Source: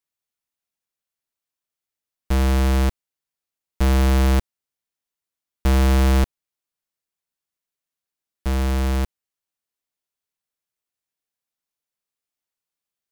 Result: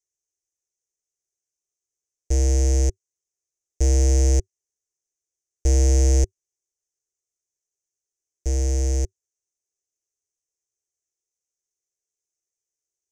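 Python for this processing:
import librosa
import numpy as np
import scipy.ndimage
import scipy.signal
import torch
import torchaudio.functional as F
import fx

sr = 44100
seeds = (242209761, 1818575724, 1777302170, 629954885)

y = fx.curve_eq(x, sr, hz=(100.0, 230.0, 380.0, 720.0, 1200.0, 1900.0, 4000.0, 6200.0, 14000.0), db=(0, -19, 5, -9, -29, -10, -16, 13, -18))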